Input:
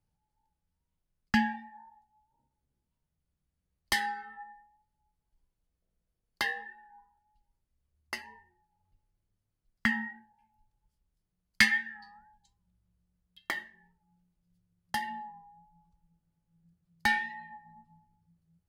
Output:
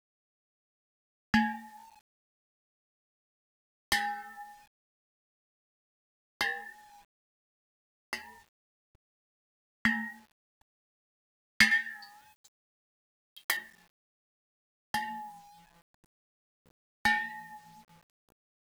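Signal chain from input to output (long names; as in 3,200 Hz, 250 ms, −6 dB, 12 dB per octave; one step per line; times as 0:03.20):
0:11.71–0:13.57: RIAA equalisation recording
bit-depth reduction 10 bits, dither none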